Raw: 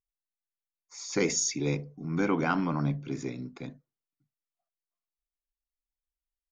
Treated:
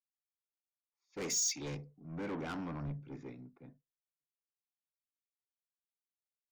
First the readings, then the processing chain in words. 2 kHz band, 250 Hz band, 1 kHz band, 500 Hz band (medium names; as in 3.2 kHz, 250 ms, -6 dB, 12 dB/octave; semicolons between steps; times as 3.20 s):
-13.0 dB, -12.5 dB, -13.5 dB, -12.0 dB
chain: level-controlled noise filter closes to 1.1 kHz, open at -24 dBFS; saturation -30.5 dBFS, distortion -8 dB; three bands expanded up and down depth 100%; trim -7 dB